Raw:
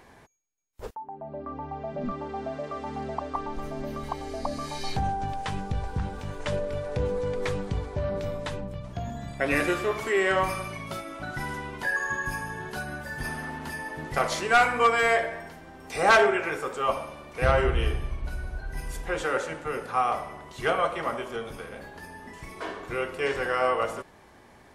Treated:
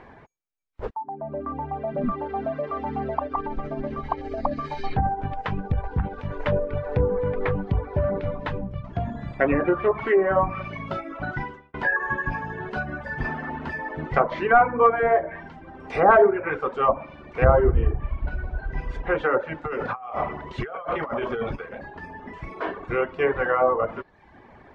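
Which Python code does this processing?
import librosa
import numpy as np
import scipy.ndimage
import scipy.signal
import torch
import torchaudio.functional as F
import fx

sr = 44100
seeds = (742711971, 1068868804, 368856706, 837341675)

y = fx.tremolo(x, sr, hz=15.0, depth=0.3, at=(3.26, 6.31))
y = fx.over_compress(y, sr, threshold_db=-35.0, ratio=-1.0, at=(19.64, 21.56))
y = fx.edit(y, sr, fx.fade_out_span(start_s=11.32, length_s=0.42), tone=tone)
y = scipy.signal.sosfilt(scipy.signal.butter(2, 2100.0, 'lowpass', fs=sr, output='sos'), y)
y = fx.env_lowpass_down(y, sr, base_hz=1100.0, full_db=-21.5)
y = fx.dereverb_blind(y, sr, rt60_s=0.78)
y = F.gain(torch.from_numpy(y), 7.0).numpy()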